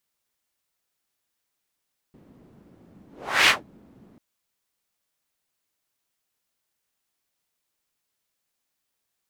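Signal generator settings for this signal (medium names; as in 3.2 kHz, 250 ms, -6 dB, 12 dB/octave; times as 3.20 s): whoosh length 2.04 s, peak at 1.34 s, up 0.42 s, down 0.17 s, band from 230 Hz, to 2.5 kHz, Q 1.6, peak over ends 36 dB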